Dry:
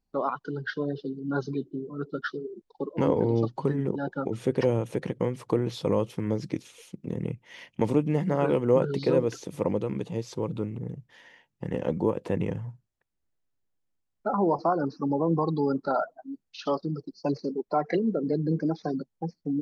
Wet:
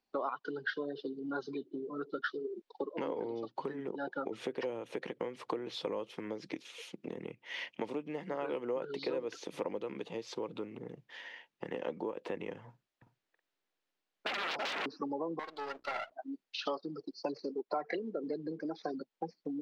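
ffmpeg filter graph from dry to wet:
ffmpeg -i in.wav -filter_complex "[0:a]asettb=1/sr,asplit=3[link_01][link_02][link_03];[link_01]atrim=end=12.694[link_04];[link_02]atrim=start=12.69:end=14.86,asetpts=PTS-STARTPTS,afade=type=in:duration=0.004:curve=qsin,afade=type=out:start_time=2.166:duration=0.004:curve=qsin,aecho=1:1:329|376:0.501|0.282,atrim=end_sample=95697,aeval=exprs='0.0316*(abs(mod(val(0)/0.0316+3,4)-2)-1)':channel_layout=same[link_05];[link_03]atrim=start=14.856[link_06];[link_04][link_05]acrossfade=duration=0.004:curve1=hsin:curve2=qsin[link_07];[link_07][link_06]acrossfade=duration=0.004:curve1=qsin:curve2=hsin,asettb=1/sr,asplit=3[link_08][link_09][link_10];[link_08]atrim=end=15.394[link_11];[link_09]atrim=start=15.39:end=16.12,asetpts=PTS-STARTPTS,afade=type=in:duration=0.004:curve=qsin,afade=type=out:start_time=0.726:duration=0.004:curve=qsin,highpass=710,aeval=exprs='val(0)+0.001*(sin(2*PI*60*n/s)+sin(2*PI*2*60*n/s)/2+sin(2*PI*3*60*n/s)/3+sin(2*PI*4*60*n/s)/4+sin(2*PI*5*60*n/s)/5)':channel_layout=same,aeval=exprs='max(val(0),0)':channel_layout=same[link_12];[link_10]atrim=start=16.116[link_13];[link_11][link_12]acrossfade=duration=0.004:curve1=hsin:curve2=qsin[link_14];[link_14][link_13]acrossfade=duration=0.004:curve1=qsin:curve2=hsin,highshelf=frequency=2600:gain=11,acompressor=threshold=-34dB:ratio=6,acrossover=split=260 4100:gain=0.0794 1 0.1[link_15][link_16][link_17];[link_15][link_16][link_17]amix=inputs=3:normalize=0,volume=2dB" out.wav

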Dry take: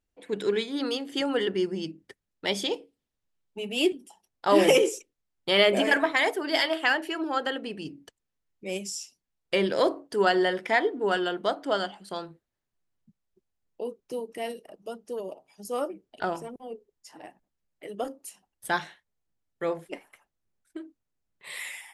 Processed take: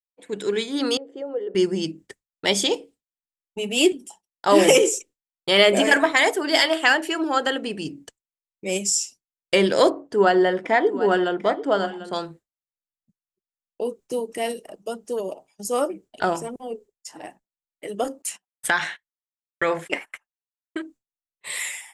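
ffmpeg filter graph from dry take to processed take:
ffmpeg -i in.wav -filter_complex "[0:a]asettb=1/sr,asplit=3[link_01][link_02][link_03];[link_01]atrim=end=0.974[link_04];[link_02]atrim=start=0.97:end=1.55,asetpts=PTS-STARTPTS,afade=type=in:duration=0.004:curve=qsin,afade=type=out:start_time=0.576:duration=0.004:curve=qsin,bandpass=frequency=490:width_type=q:width=4.1,acompressor=threshold=-39dB:ratio=1.5:attack=3.2:release=140:knee=1:detection=peak[link_05];[link_03]atrim=start=1.546[link_06];[link_04][link_05]acrossfade=duration=0.004:curve1=hsin:curve2=qsin[link_07];[link_07][link_06]acrossfade=duration=0.004:curve1=qsin:curve2=hsin,asettb=1/sr,asplit=3[link_08][link_09][link_10];[link_08]atrim=end=9.904[link_11];[link_09]atrim=start=9.9:end=12.13,asetpts=PTS-STARTPTS,afade=type=in:duration=0.004:curve=qsin,afade=type=out:start_time=2.226:duration=0.004:curve=qsin,lowpass=frequency=1300:poles=1,aecho=1:1:743:0.2,atrim=end_sample=98343[link_12];[link_10]atrim=start=12.126[link_13];[link_11][link_12]acrossfade=duration=0.004:curve1=hsin:curve2=qsin[link_14];[link_14][link_13]acrossfade=duration=0.004:curve1=qsin:curve2=hsin,asettb=1/sr,asplit=3[link_15][link_16][link_17];[link_15]atrim=end=18.224[link_18];[link_16]atrim=start=18.22:end=20.82,asetpts=PTS-STARTPTS,afade=type=in:duration=0.004:curve=qsin,afade=type=out:start_time=2.596:duration=0.004:curve=qsin,agate=range=-23dB:threshold=-57dB:ratio=16:release=100:detection=peak,equalizer=frequency=1900:width_type=o:width=2.1:gain=13,acompressor=threshold=-23dB:ratio=4:attack=3.2:release=140:knee=1:detection=peak[link_19];[link_17]atrim=start=20.816[link_20];[link_18][link_19]acrossfade=duration=0.004:curve1=hsin:curve2=qsin[link_21];[link_21][link_20]acrossfade=duration=0.004:curve1=qsin:curve2=hsin,agate=range=-33dB:threshold=-48dB:ratio=3:detection=peak,equalizer=frequency=7500:width=1.8:gain=9.5,dynaudnorm=framelen=460:gausssize=3:maxgain=7dB" out.wav

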